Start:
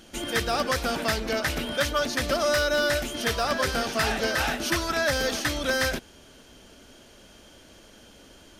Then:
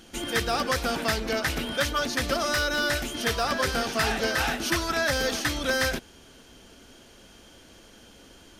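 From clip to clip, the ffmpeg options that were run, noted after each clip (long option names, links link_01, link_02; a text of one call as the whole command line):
ffmpeg -i in.wav -af "bandreject=frequency=600:width=12" out.wav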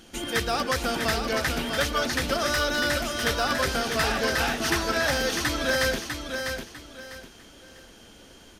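ffmpeg -i in.wav -af "aecho=1:1:649|1298|1947|2596:0.501|0.14|0.0393|0.011" out.wav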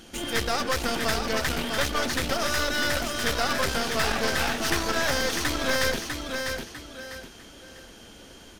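ffmpeg -i in.wav -af "aeval=exprs='clip(val(0),-1,0.015)':channel_layout=same,volume=2.5dB" out.wav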